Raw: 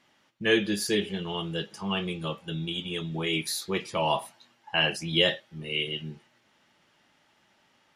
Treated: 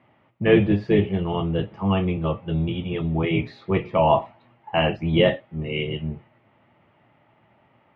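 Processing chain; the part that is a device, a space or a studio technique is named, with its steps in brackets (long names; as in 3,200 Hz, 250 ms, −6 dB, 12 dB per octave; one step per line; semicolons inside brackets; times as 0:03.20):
0:02.92–0:04.21: mains-hum notches 60/120/180/240/300/360/420/480 Hz
low-shelf EQ 110 Hz +6 dB
sub-octave bass pedal (sub-octave generator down 1 octave, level −3 dB; loudspeaker in its box 86–2,200 Hz, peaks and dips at 120 Hz +5 dB, 660 Hz +4 dB, 1,600 Hz −10 dB)
level +7 dB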